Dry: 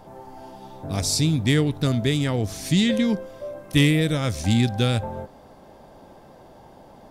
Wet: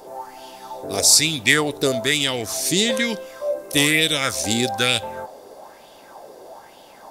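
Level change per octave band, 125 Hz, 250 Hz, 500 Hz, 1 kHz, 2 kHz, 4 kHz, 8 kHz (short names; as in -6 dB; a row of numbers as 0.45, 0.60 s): -10.0, -4.0, +4.0, +6.0, +9.5, +8.5, +12.0 dB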